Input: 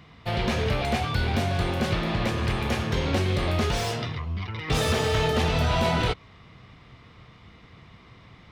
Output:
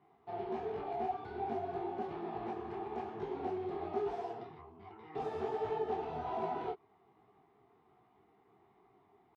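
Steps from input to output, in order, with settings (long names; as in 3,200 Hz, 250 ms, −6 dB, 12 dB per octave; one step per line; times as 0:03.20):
tempo change 0.91×
pair of resonant band-passes 550 Hz, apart 0.93 octaves
micro pitch shift up and down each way 43 cents
level +1 dB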